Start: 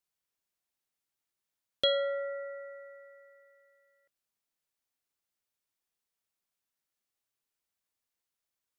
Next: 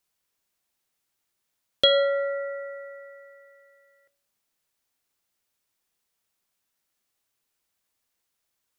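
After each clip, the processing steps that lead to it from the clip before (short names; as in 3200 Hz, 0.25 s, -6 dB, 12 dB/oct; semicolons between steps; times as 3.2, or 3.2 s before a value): de-hum 140.9 Hz, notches 36; gain +9 dB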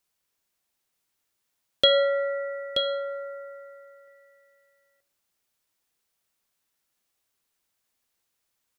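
echo 0.929 s -7 dB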